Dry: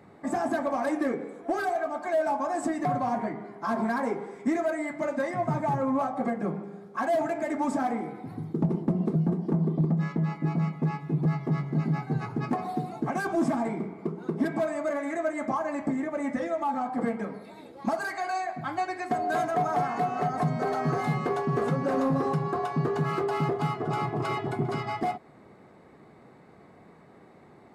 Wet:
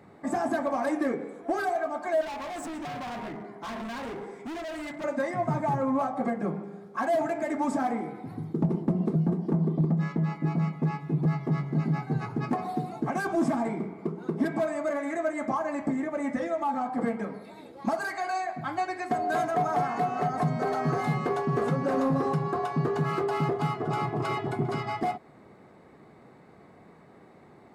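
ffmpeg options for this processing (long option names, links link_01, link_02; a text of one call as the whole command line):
ffmpeg -i in.wav -filter_complex "[0:a]asettb=1/sr,asplit=3[link_01][link_02][link_03];[link_01]atrim=end=2.214[link_04];[link_02]atrim=start=2.21:end=5.04,asetpts=PTS-STARTPTS,afade=type=in:duration=0.004:curve=qsin,afade=type=out:start_time=2.826:duration=0.004:curve=qsin,volume=34.5dB,asoftclip=hard,volume=-34.5dB[link_05];[link_03]atrim=start=5.036[link_06];[link_04][link_05]acrossfade=duration=0.004:curve1=hsin:curve2=qsin[link_07];[link_07][link_06]acrossfade=duration=0.004:curve1=qsin:curve2=hsin" out.wav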